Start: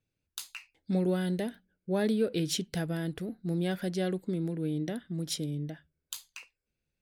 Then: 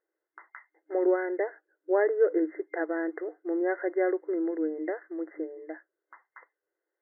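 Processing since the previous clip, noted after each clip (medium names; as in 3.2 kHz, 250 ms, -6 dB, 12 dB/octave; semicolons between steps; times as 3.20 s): FFT band-pass 310–2100 Hz; trim +7 dB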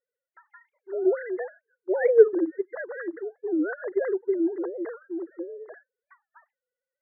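formants replaced by sine waves; warped record 45 rpm, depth 250 cents; trim +3 dB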